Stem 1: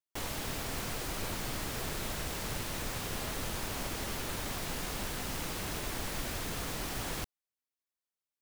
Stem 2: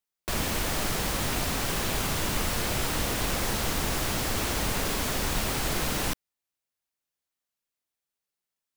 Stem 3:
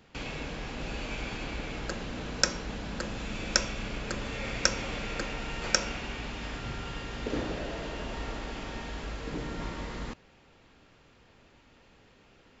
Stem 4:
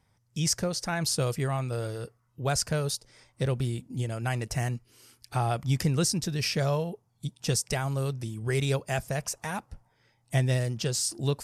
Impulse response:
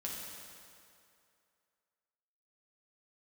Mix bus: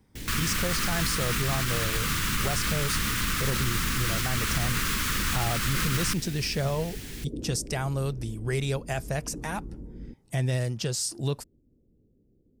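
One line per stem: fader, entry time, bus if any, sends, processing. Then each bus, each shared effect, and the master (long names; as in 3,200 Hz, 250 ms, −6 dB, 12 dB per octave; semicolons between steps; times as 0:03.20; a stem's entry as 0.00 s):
−2.5 dB, 0.00 s, no send, flat-topped bell 810 Hz −14 dB
+1.5 dB, 0.00 s, no send, drawn EQ curve 210 Hz 0 dB, 710 Hz −23 dB, 1,200 Hz +4 dB, 1,800 Hz +3 dB, 4,500 Hz 0 dB
−2.0 dB, 0.00 s, no send, inverse Chebyshev band-stop filter 1,300–4,700 Hz, stop band 70 dB
+0.5 dB, 0.00 s, no send, brickwall limiter −20 dBFS, peak gain reduction 7 dB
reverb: not used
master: brickwall limiter −16.5 dBFS, peak gain reduction 4.5 dB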